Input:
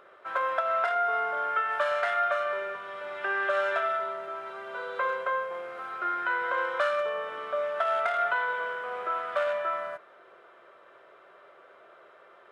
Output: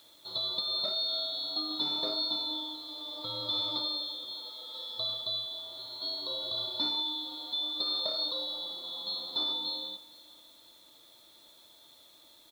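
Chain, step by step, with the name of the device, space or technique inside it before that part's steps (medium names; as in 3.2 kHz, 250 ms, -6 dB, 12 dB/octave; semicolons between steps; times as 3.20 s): split-band scrambled radio (four frequency bands reordered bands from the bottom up 2413; band-pass 380–3200 Hz; white noise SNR 28 dB); 4.31–4.95 s: high-pass 210 Hz 24 dB/octave; feedback delay 467 ms, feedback 35%, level -21 dB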